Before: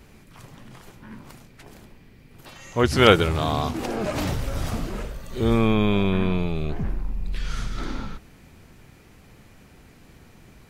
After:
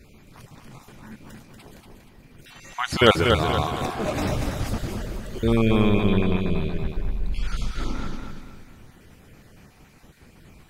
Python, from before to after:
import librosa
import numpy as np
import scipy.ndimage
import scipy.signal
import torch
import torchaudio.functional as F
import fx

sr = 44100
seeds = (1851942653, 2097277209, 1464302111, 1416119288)

p1 = fx.spec_dropout(x, sr, seeds[0], share_pct=28)
y = p1 + fx.echo_feedback(p1, sr, ms=237, feedback_pct=39, wet_db=-5.0, dry=0)